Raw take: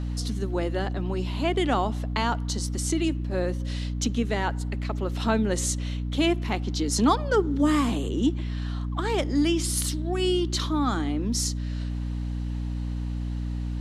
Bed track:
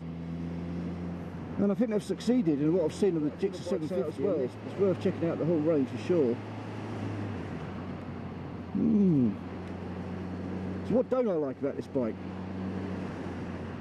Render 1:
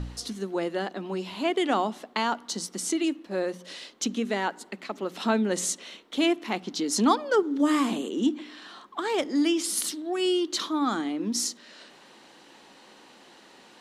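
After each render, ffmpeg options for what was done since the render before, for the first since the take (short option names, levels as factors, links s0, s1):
-af "bandreject=f=60:t=h:w=4,bandreject=f=120:t=h:w=4,bandreject=f=180:t=h:w=4,bandreject=f=240:t=h:w=4,bandreject=f=300:t=h:w=4"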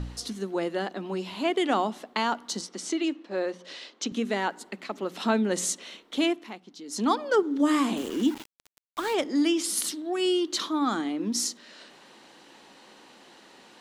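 -filter_complex "[0:a]asettb=1/sr,asplit=3[s0][s1][s2];[s0]atrim=end=2.614[s3];[s1]atrim=start=2.61:end=4.12,asetpts=PTS-STARTPTS,afade=t=in:d=0.004:c=qsin,afade=t=out:st=1.506:d=0.004:c=qsin,highpass=250,lowpass=5900[s4];[s2]atrim=start=4.116[s5];[s3][s4]acrossfade=d=0.004:c1=hsin:c2=qsin[s6];[s6][s5]acrossfade=d=0.004:c1=qsin:c2=hsin,asettb=1/sr,asplit=3[s7][s8][s9];[s7]atrim=end=7.974[s10];[s8]atrim=start=7.97:end=9.14,asetpts=PTS-STARTPTS,afade=t=in:d=0.004:c=qsin,afade=t=out:st=1.166:d=0.004:c=qsin,aeval=exprs='val(0)*gte(abs(val(0)),0.0168)':c=same[s11];[s9]atrim=start=9.136[s12];[s10][s11]acrossfade=d=0.004:c1=hsin:c2=qsin[s13];[s13][s12]acrossfade=d=0.004:c1=qsin:c2=hsin,asplit=3[s14][s15][s16];[s14]atrim=end=6.57,asetpts=PTS-STARTPTS,afade=t=out:st=6.18:d=0.39:silence=0.188365[s17];[s15]atrim=start=6.57:end=6.84,asetpts=PTS-STARTPTS,volume=0.188[s18];[s16]atrim=start=6.84,asetpts=PTS-STARTPTS,afade=t=in:d=0.39:silence=0.188365[s19];[s17][s18][s19]concat=n=3:v=0:a=1"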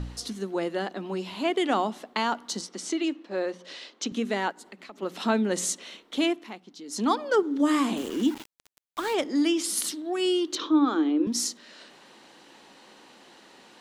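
-filter_complex "[0:a]asplit=3[s0][s1][s2];[s0]afade=t=out:st=4.51:d=0.02[s3];[s1]acompressor=threshold=0.00631:ratio=2.5:attack=3.2:release=140:knee=1:detection=peak,afade=t=in:st=4.51:d=0.02,afade=t=out:st=5.01:d=0.02[s4];[s2]afade=t=in:st=5.01:d=0.02[s5];[s3][s4][s5]amix=inputs=3:normalize=0,asettb=1/sr,asplit=3[s6][s7][s8];[s6]atrim=end=10.554[s9];[s7]atrim=start=10.55:end=11.27,asetpts=PTS-STARTPTS,afade=t=in:d=0.004:c=qsin,afade=t=out:st=0.716:d=0.004:c=qsin,highpass=f=260:w=0.5412,highpass=f=260:w=1.3066,equalizer=f=310:t=q:w=4:g=9,equalizer=f=470:t=q:w=4:g=7,equalizer=f=700:t=q:w=4:g=-5,equalizer=f=2000:t=q:w=4:g=-7,equalizer=f=4600:t=q:w=4:g=-8,lowpass=f=5100:w=0.5412,lowpass=f=5100:w=1.3066[s10];[s8]atrim=start=11.266[s11];[s9][s10]acrossfade=d=0.004:c1=hsin:c2=qsin[s12];[s12][s11]acrossfade=d=0.004:c1=qsin:c2=hsin"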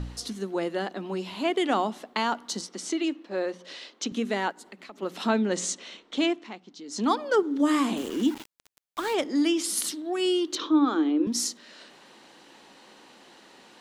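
-filter_complex "[0:a]asettb=1/sr,asplit=3[s0][s1][s2];[s0]atrim=end=5.274[s3];[s1]atrim=start=5.27:end=7.04,asetpts=PTS-STARTPTS,afade=t=in:d=0.004:c=qsin,afade=t=out:st=1.766:d=0.004:c=qsin,lowpass=f=7900:w=0.5412,lowpass=f=7900:w=1.3066[s4];[s2]atrim=start=7.036[s5];[s3][s4]acrossfade=d=0.004:c1=hsin:c2=qsin[s6];[s6][s5]acrossfade=d=0.004:c1=qsin:c2=hsin"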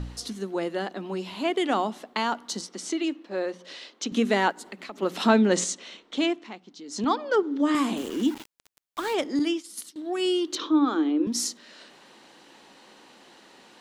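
-filter_complex "[0:a]asettb=1/sr,asplit=3[s0][s1][s2];[s0]atrim=end=4.124[s3];[s1]atrim=start=4.12:end=5.64,asetpts=PTS-STARTPTS,afade=t=in:d=0.004:c=qsin,afade=t=out:st=1.516:d=0.004:c=qsin,acontrast=35[s4];[s2]atrim=start=5.636[s5];[s3][s4]acrossfade=d=0.004:c1=hsin:c2=qsin[s6];[s6][s5]acrossfade=d=0.004:c1=qsin:c2=hsin,asettb=1/sr,asplit=3[s7][s8][s9];[s7]atrim=end=7.044[s10];[s8]atrim=start=7.04:end=7.75,asetpts=PTS-STARTPTS,afade=t=in:d=0.004:c=qsin,afade=t=out:st=0.706:d=0.004:c=qsin,highpass=180,lowpass=5400[s11];[s9]atrim=start=7.746[s12];[s10][s11]acrossfade=d=0.004:c1=hsin:c2=qsin[s13];[s13][s12]acrossfade=d=0.004:c1=qsin:c2=hsin,asettb=1/sr,asplit=3[s14][s15][s16];[s14]atrim=end=9.394[s17];[s15]atrim=start=9.39:end=9.96,asetpts=PTS-STARTPTS,afade=t=in:d=0.004:c=qsin,afade=t=out:st=0.566:d=0.004:c=qsin,agate=range=0.0224:threshold=0.0891:ratio=3:release=100:detection=peak[s18];[s16]atrim=start=9.956[s19];[s17][s18]acrossfade=d=0.004:c1=hsin:c2=qsin[s20];[s20][s19]acrossfade=d=0.004:c1=qsin:c2=hsin"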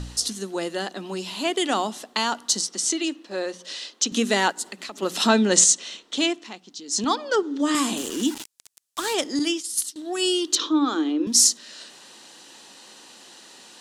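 -af "equalizer=f=8200:t=o:w=2.3:g=14.5,bandreject=f=2200:w=13"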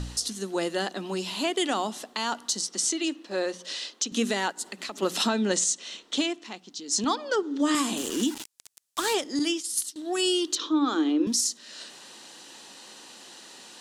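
-af "alimiter=limit=0.178:level=0:latency=1:release=344"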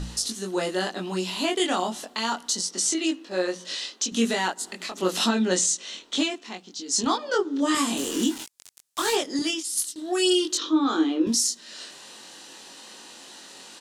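-filter_complex "[0:a]asplit=2[s0][s1];[s1]adelay=22,volume=0.794[s2];[s0][s2]amix=inputs=2:normalize=0"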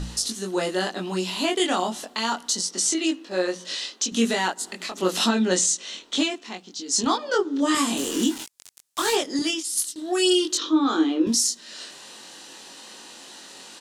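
-af "volume=1.19"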